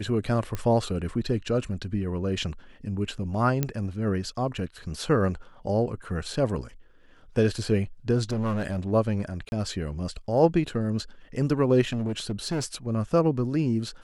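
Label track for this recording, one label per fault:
0.550000	0.550000	pop -17 dBFS
3.630000	3.630000	pop -11 dBFS
8.300000	8.910000	clipped -23.5 dBFS
9.490000	9.520000	dropout 31 ms
11.880000	12.660000	clipped -24 dBFS

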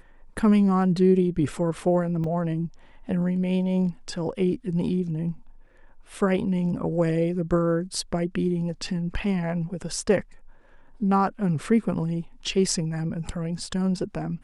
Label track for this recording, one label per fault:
2.240000	2.240000	dropout 3 ms

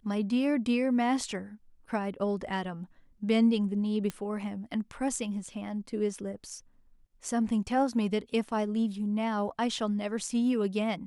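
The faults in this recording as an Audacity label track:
4.100000	4.100000	pop -20 dBFS

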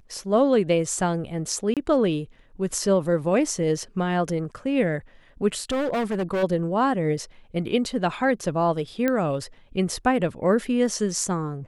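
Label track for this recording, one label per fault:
1.740000	1.770000	dropout 27 ms
5.700000	6.440000	clipped -21.5 dBFS
9.080000	9.080000	pop -11 dBFS

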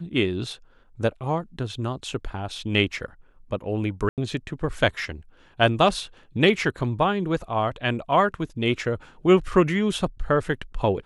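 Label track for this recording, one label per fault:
4.090000	4.180000	dropout 88 ms

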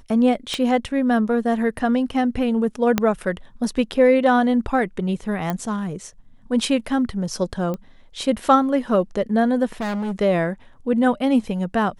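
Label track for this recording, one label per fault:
0.540000	0.540000	pop -12 dBFS
2.980000	2.980000	pop -4 dBFS
5.500000	5.500000	pop -11 dBFS
7.740000	7.740000	pop -17 dBFS
9.720000	10.120000	clipped -22.5 dBFS

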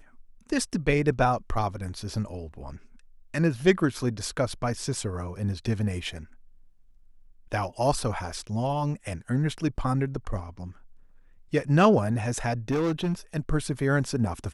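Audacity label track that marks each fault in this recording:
12.700000	13.130000	clipped -22 dBFS

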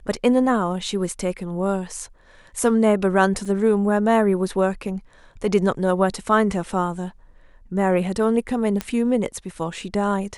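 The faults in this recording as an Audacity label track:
3.450000	3.450000	dropout 4.5 ms
8.810000	8.810000	pop -10 dBFS

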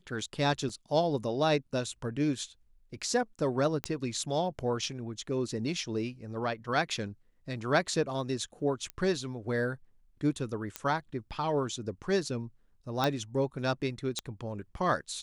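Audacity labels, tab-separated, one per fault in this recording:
0.690000	0.690000	dropout 3.6 ms
3.840000	3.840000	pop -16 dBFS
8.900000	8.900000	pop -22 dBFS
10.760000	10.760000	pop -16 dBFS
13.040000	13.040000	pop -14 dBFS
14.190000	14.190000	pop -18 dBFS

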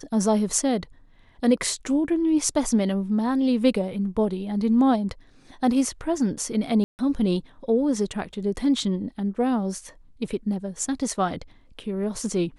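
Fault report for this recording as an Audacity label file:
6.840000	6.990000	dropout 149 ms

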